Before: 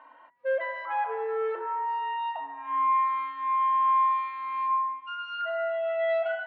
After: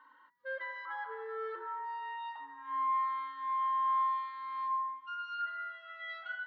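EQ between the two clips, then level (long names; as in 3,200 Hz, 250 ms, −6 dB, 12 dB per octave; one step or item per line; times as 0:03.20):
high-shelf EQ 2,500 Hz +8.5 dB
phaser with its sweep stopped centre 2,500 Hz, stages 6
−6.0 dB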